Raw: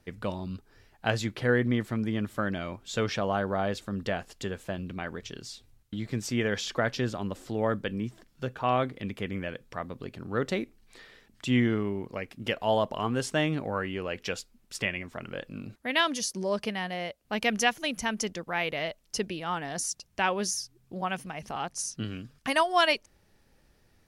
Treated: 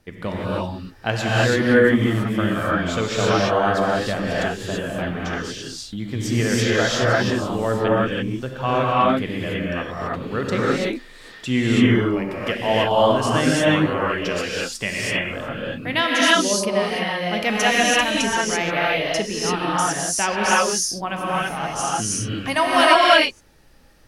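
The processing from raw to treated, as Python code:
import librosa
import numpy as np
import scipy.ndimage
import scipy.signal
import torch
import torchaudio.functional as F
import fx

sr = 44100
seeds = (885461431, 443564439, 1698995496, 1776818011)

y = fx.rev_gated(x, sr, seeds[0], gate_ms=360, shape='rising', drr_db=-6.5)
y = y * 10.0 ** (3.5 / 20.0)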